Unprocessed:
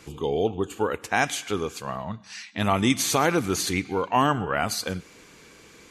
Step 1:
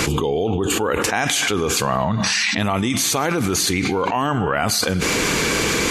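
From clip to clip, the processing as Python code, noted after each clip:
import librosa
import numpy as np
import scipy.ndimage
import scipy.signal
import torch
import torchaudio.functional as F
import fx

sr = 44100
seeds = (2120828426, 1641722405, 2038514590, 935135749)

y = fx.env_flatten(x, sr, amount_pct=100)
y = F.gain(torch.from_numpy(y), -2.0).numpy()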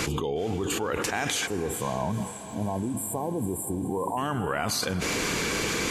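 y = fx.spec_erase(x, sr, start_s=1.47, length_s=2.7, low_hz=1100.0, high_hz=7200.0)
y = fx.echo_diffused(y, sr, ms=487, feedback_pct=55, wet_db=-14.0)
y = F.gain(torch.from_numpy(y), -8.5).numpy()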